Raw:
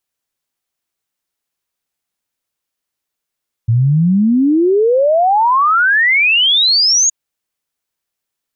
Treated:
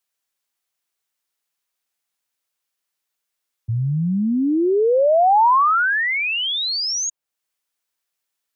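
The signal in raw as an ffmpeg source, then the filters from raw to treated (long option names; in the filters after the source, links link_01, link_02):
-f lavfi -i "aevalsrc='0.376*clip(min(t,3.42-t)/0.01,0,1)*sin(2*PI*110*3.42/log(6800/110)*(exp(log(6800/110)*t/3.42)-1))':duration=3.42:sample_rate=44100"
-filter_complex "[0:a]lowshelf=frequency=430:gain=-10,acrossover=split=160|1100[link_01][link_02][link_03];[link_03]alimiter=limit=-20dB:level=0:latency=1:release=388[link_04];[link_01][link_02][link_04]amix=inputs=3:normalize=0"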